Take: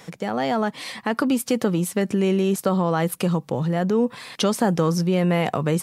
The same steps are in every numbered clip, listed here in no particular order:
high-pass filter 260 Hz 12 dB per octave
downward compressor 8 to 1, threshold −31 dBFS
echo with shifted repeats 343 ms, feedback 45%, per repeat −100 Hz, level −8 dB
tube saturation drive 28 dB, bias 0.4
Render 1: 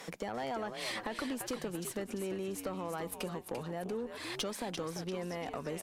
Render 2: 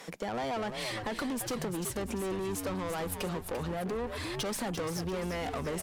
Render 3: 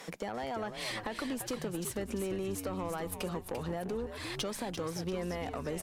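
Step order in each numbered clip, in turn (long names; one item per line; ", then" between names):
downward compressor, then echo with shifted repeats, then high-pass filter, then tube saturation
high-pass filter, then tube saturation, then echo with shifted repeats, then downward compressor
high-pass filter, then downward compressor, then tube saturation, then echo with shifted repeats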